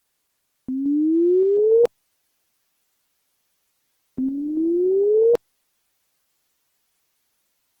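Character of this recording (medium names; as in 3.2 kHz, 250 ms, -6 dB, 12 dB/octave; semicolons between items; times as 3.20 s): random-step tremolo; a quantiser's noise floor 12-bit, dither triangular; Opus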